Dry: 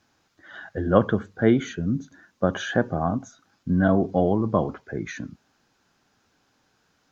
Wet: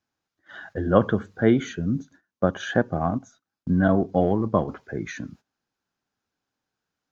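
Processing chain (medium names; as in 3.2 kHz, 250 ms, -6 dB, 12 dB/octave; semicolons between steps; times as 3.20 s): gate -47 dBFS, range -17 dB; 1.98–4.68 s: transient shaper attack +1 dB, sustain -6 dB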